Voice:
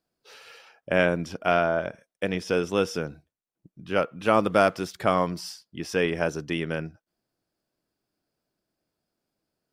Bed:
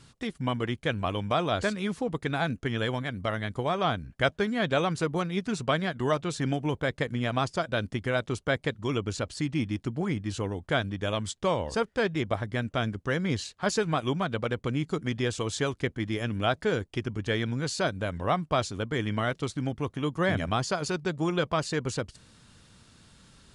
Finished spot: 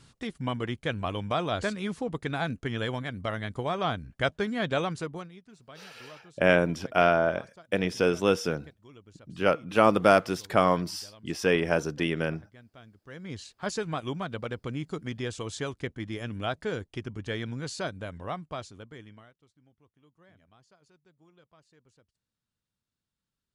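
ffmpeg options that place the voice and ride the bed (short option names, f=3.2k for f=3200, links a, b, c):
-filter_complex "[0:a]adelay=5500,volume=0.5dB[a];[1:a]volume=16dB,afade=t=out:st=4.78:d=0.61:silence=0.0891251,afade=t=in:st=13.03:d=0.6:silence=0.125893,afade=t=out:st=17.75:d=1.58:silence=0.0375837[b];[a][b]amix=inputs=2:normalize=0"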